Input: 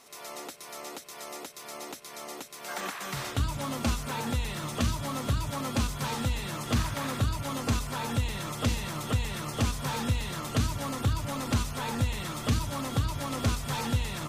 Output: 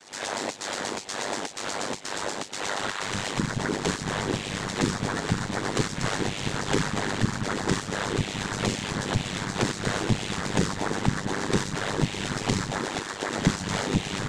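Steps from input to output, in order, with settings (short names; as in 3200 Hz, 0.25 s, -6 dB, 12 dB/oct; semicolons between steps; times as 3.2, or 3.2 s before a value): recorder AGC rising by 41 dB/s; 12.78–13.35 HPF 240 Hz 24 dB/oct; noise vocoder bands 6; AM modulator 100 Hz, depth 75%; gain +8.5 dB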